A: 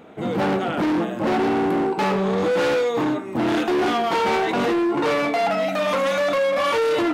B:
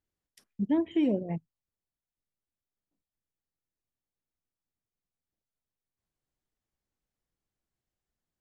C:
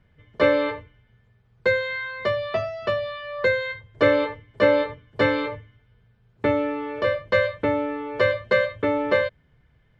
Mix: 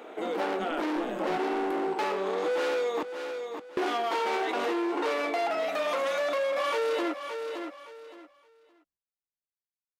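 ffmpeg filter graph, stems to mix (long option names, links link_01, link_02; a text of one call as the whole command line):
ffmpeg -i stem1.wav -i stem2.wav -filter_complex "[0:a]highpass=frequency=320:width=0.5412,highpass=frequency=320:width=1.3066,volume=2dB,asplit=3[link_01][link_02][link_03];[link_01]atrim=end=3.03,asetpts=PTS-STARTPTS,afade=type=out:start_time=3.026:duration=0.004:curve=hsin[link_04];[link_02]atrim=start=3.03:end=3.77,asetpts=PTS-STARTPTS,volume=0[link_05];[link_03]atrim=start=3.77,asetpts=PTS-STARTPTS,afade=type=in:duration=0.004:curve=hsin[link_06];[link_04][link_05][link_06]concat=n=3:v=0:a=1,asplit=2[link_07][link_08];[link_08]volume=-14dB[link_09];[1:a]aeval=exprs='clip(val(0),-1,0.0447)':channel_layout=same,volume=-4dB,asplit=2[link_10][link_11];[link_11]volume=-7dB[link_12];[link_09][link_12]amix=inputs=2:normalize=0,aecho=0:1:568|1136|1704:1|0.19|0.0361[link_13];[link_07][link_10][link_13]amix=inputs=3:normalize=0,acompressor=threshold=-34dB:ratio=2" out.wav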